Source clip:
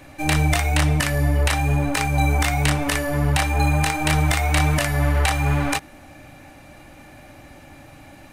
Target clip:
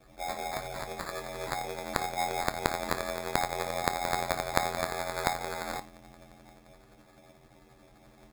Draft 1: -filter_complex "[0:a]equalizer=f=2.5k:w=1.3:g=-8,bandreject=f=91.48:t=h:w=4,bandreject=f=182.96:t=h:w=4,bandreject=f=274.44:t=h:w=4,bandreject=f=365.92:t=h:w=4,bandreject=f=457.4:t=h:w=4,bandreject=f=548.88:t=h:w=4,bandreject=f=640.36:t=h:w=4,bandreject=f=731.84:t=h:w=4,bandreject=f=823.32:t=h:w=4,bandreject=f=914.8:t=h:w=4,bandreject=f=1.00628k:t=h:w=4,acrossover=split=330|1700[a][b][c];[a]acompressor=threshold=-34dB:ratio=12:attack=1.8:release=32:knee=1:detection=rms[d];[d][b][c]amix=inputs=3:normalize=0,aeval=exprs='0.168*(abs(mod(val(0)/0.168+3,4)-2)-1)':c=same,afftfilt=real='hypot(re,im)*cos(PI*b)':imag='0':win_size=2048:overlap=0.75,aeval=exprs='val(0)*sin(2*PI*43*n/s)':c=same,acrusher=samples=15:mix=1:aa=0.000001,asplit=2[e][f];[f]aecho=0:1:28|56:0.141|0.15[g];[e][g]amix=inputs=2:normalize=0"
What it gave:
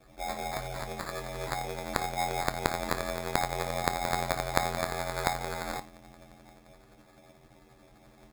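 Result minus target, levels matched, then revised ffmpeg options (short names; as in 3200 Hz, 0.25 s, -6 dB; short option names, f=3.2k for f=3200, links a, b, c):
compressor: peak gain reduction -7 dB
-filter_complex "[0:a]equalizer=f=2.5k:w=1.3:g=-8,bandreject=f=91.48:t=h:w=4,bandreject=f=182.96:t=h:w=4,bandreject=f=274.44:t=h:w=4,bandreject=f=365.92:t=h:w=4,bandreject=f=457.4:t=h:w=4,bandreject=f=548.88:t=h:w=4,bandreject=f=640.36:t=h:w=4,bandreject=f=731.84:t=h:w=4,bandreject=f=823.32:t=h:w=4,bandreject=f=914.8:t=h:w=4,bandreject=f=1.00628k:t=h:w=4,acrossover=split=330|1700[a][b][c];[a]acompressor=threshold=-41.5dB:ratio=12:attack=1.8:release=32:knee=1:detection=rms[d];[d][b][c]amix=inputs=3:normalize=0,aeval=exprs='0.168*(abs(mod(val(0)/0.168+3,4)-2)-1)':c=same,afftfilt=real='hypot(re,im)*cos(PI*b)':imag='0':win_size=2048:overlap=0.75,aeval=exprs='val(0)*sin(2*PI*43*n/s)':c=same,acrusher=samples=15:mix=1:aa=0.000001,asplit=2[e][f];[f]aecho=0:1:28|56:0.141|0.15[g];[e][g]amix=inputs=2:normalize=0"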